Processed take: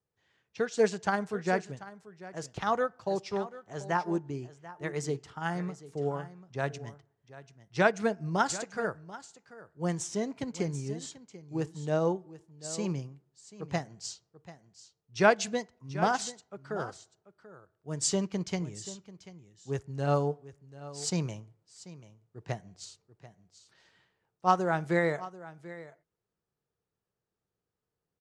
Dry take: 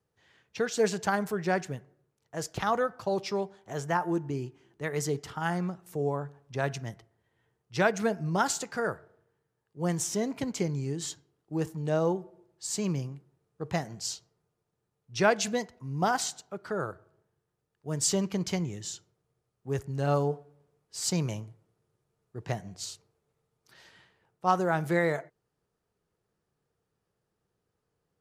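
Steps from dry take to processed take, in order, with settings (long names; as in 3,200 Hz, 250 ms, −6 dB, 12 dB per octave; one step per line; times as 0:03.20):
low-pass filter 8,900 Hz 24 dB per octave
single-tap delay 738 ms −11.5 dB
expander for the loud parts 1.5 to 1, over −40 dBFS
level +2 dB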